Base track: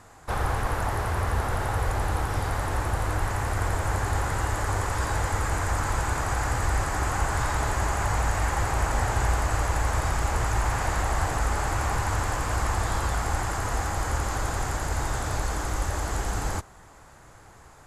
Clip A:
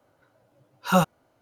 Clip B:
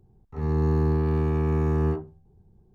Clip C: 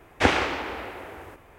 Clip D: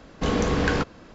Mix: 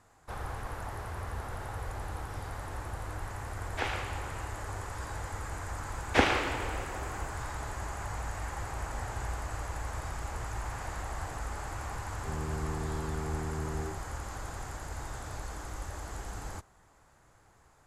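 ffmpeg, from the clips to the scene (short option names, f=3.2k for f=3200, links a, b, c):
-filter_complex "[3:a]asplit=2[a][b];[0:a]volume=-12dB[c];[a]highpass=480,lowpass=7.8k[d];[2:a]acompressor=threshold=-29dB:ratio=6:attack=3.2:release=140:knee=1:detection=peak[e];[d]atrim=end=1.58,asetpts=PTS-STARTPTS,volume=-12dB,afade=t=in:d=0.004:c=hsin,afade=t=out:st=1.576:d=0.004:c=hsin,adelay=157437S[f];[b]atrim=end=1.58,asetpts=PTS-STARTPTS,volume=-4dB,afade=t=in:d=0.004:c=hsin,afade=t=out:st=1.576:d=0.004:c=hsin,adelay=5940[g];[e]atrim=end=2.74,asetpts=PTS-STARTPTS,volume=-4.5dB,afade=t=in:d=0.004:c=hsin,afade=t=out:st=2.736:d=0.004:c=hsin,adelay=11910[h];[c][f][g][h]amix=inputs=4:normalize=0"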